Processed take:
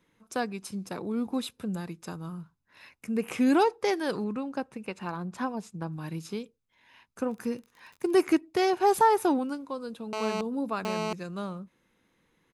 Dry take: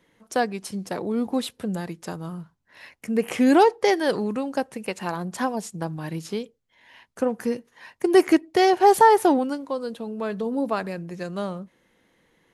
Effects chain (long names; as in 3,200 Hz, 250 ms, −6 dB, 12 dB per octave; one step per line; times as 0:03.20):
0:04.24–0:05.92: low-pass filter 3,100 Hz 6 dB per octave
0:07.30–0:08.21: surface crackle 37 per second −36 dBFS
comb filter 0.8 ms, depth 34%
0:10.13–0:11.13: phone interference −25 dBFS
level −6 dB